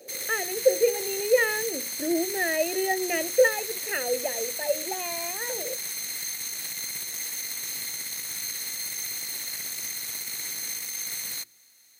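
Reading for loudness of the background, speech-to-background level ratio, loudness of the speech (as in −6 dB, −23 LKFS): −30.0 LKFS, 2.5 dB, −27.5 LKFS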